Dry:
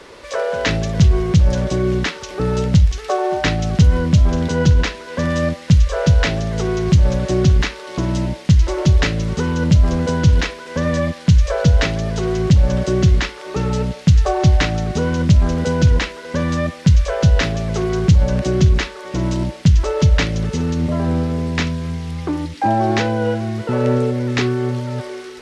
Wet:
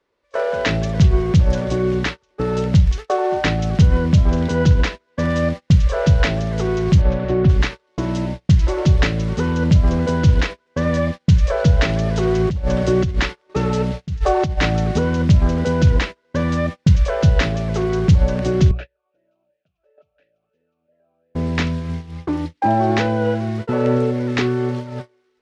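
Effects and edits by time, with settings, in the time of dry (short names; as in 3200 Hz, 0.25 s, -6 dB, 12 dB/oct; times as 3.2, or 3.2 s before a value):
7.01–7.48 LPF 3700 Hz -> 2100 Hz
11.89–14.99 negative-ratio compressor -16 dBFS
18.71–21.35 vowel sweep a-e 2.9 Hz
whole clip: LPF 3900 Hz 6 dB/oct; notches 60/120/180 Hz; gate -24 dBFS, range -31 dB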